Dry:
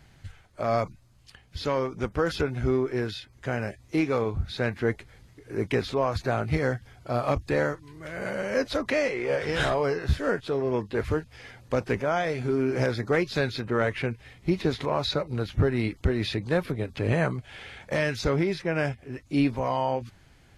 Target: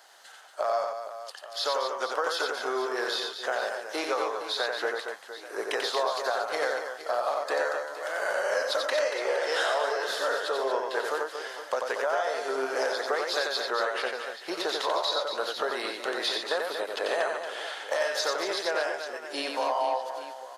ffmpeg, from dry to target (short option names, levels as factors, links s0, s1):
-af "highpass=f=590:w=0.5412,highpass=f=590:w=1.3066,equalizer=f=2300:t=o:w=0.48:g=-13.5,acompressor=threshold=0.0178:ratio=6,aecho=1:1:90|234|464.4|833|1423:0.631|0.398|0.251|0.158|0.1,volume=2.82"